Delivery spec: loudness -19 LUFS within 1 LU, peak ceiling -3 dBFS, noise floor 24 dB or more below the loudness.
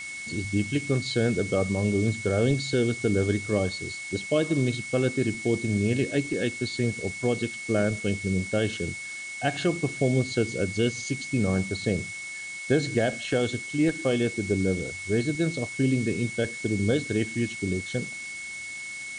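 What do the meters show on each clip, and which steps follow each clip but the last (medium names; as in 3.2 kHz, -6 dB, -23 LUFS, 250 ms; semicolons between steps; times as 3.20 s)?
steady tone 2.2 kHz; tone level -35 dBFS; noise floor -37 dBFS; noise floor target -51 dBFS; loudness -27.0 LUFS; peak level -10.0 dBFS; loudness target -19.0 LUFS
-> band-stop 2.2 kHz, Q 30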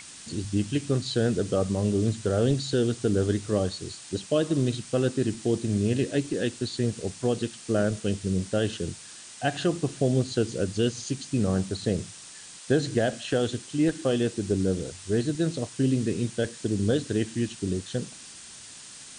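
steady tone not found; noise floor -45 dBFS; noise floor target -52 dBFS
-> noise print and reduce 7 dB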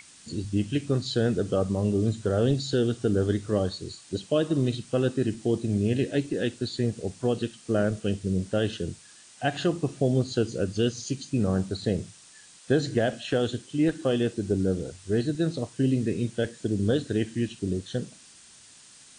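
noise floor -52 dBFS; loudness -27.5 LUFS; peak level -10.0 dBFS; loudness target -19.0 LUFS
-> trim +8.5 dB; peak limiter -3 dBFS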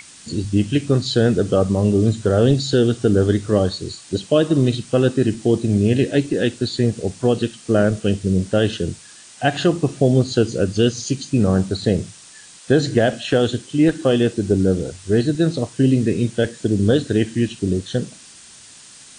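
loudness -19.0 LUFS; peak level -3.0 dBFS; noise floor -44 dBFS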